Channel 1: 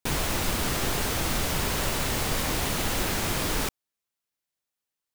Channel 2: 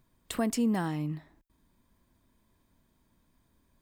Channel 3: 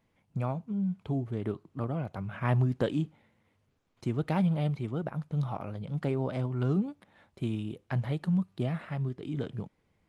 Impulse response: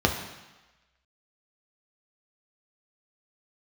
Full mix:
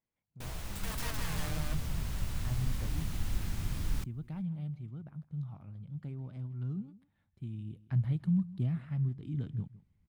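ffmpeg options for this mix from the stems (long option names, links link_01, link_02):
-filter_complex "[0:a]adelay=350,volume=-18dB[link_01];[1:a]bass=frequency=250:gain=5,treble=frequency=4000:gain=7,aeval=exprs='(mod(22.4*val(0)+1,2)-1)/22.4':channel_layout=same,adelay=450,volume=-2.5dB,asplit=2[link_02][link_03];[link_03]volume=-9.5dB[link_04];[2:a]lowshelf=frequency=180:gain=-4,volume=-11.5dB,afade=type=in:start_time=7.52:duration=0.49:silence=0.398107,asplit=3[link_05][link_06][link_07];[link_06]volume=-18.5dB[link_08];[link_07]apad=whole_len=188157[link_09];[link_02][link_09]sidechaincompress=threshold=-56dB:ratio=8:attack=5.1:release=965[link_10];[link_04][link_08]amix=inputs=2:normalize=0,aecho=0:1:160:1[link_11];[link_01][link_10][link_05][link_11]amix=inputs=4:normalize=0,asubboost=boost=11.5:cutoff=150"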